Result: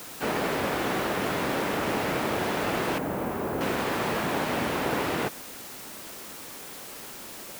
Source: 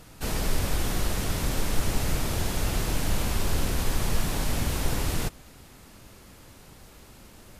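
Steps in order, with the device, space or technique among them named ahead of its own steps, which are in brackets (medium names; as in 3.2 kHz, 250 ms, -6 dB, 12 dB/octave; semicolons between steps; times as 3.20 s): wax cylinder (band-pass 280–2300 Hz; wow and flutter; white noise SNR 13 dB); 2.98–3.61 s: peaking EQ 3.7 kHz -14.5 dB 2.5 oct; trim +8 dB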